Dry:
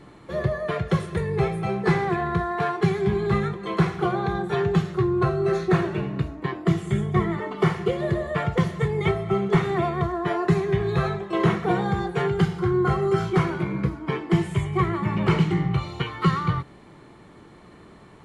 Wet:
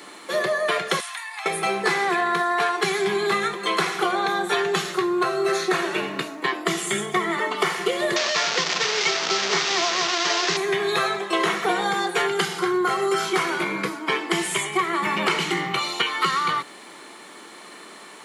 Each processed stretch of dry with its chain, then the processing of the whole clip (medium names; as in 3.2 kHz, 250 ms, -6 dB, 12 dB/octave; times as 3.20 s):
1.00–1.46 s: rippled Chebyshev high-pass 690 Hz, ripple 3 dB + compression 4:1, threshold -42 dBFS
8.16–10.57 s: one-bit delta coder 32 kbps, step -21 dBFS + hum notches 50/100/150/200/250/300/350/400/450 Hz
whole clip: high-pass 210 Hz 24 dB/octave; tilt EQ +4 dB/octave; compression, threshold -27 dBFS; trim +8.5 dB